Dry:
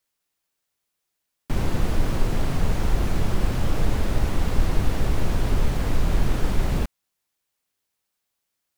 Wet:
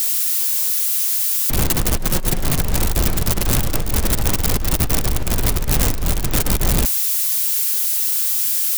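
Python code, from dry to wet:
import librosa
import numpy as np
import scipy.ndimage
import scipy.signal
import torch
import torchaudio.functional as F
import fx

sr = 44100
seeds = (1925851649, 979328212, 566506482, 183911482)

y = x + 0.5 * 10.0 ** (-12.5 / 20.0) * np.diff(np.sign(x), prepend=np.sign(x[:1]))
y = fx.comb(y, sr, ms=5.5, depth=0.4, at=(1.96, 2.44))
y = fx.over_compress(y, sr, threshold_db=-21.0, ratio=-1.0)
y = F.gain(torch.from_numpy(y), 3.5).numpy()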